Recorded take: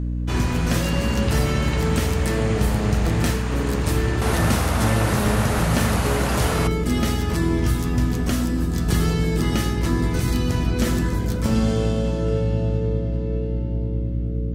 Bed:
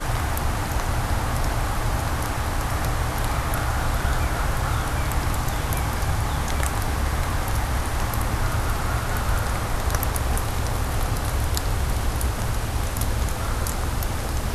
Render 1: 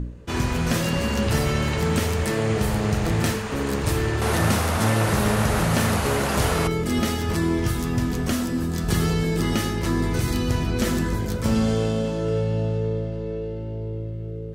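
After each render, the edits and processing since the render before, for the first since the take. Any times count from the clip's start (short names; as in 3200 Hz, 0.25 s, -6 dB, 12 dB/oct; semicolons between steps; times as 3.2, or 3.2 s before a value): de-hum 60 Hz, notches 5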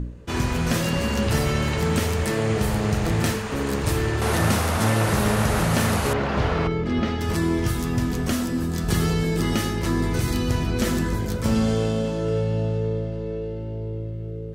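6.13–7.21 air absorption 220 m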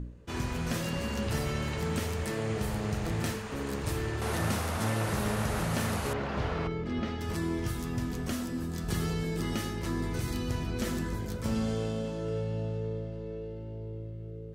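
gain -9.5 dB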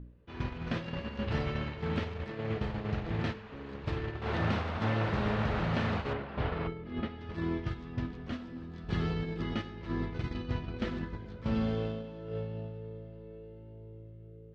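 gate -31 dBFS, range -9 dB; LPF 3800 Hz 24 dB/oct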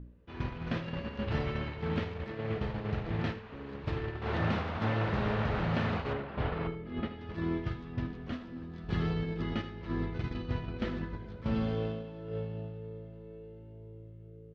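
air absorption 60 m; echo 79 ms -14.5 dB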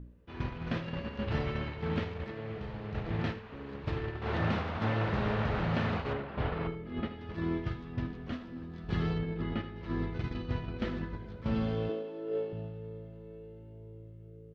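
2.3–2.95 compressor 4:1, threshold -36 dBFS; 9.18–9.76 air absorption 190 m; 11.89–12.53 resonant high-pass 350 Hz, resonance Q 2.9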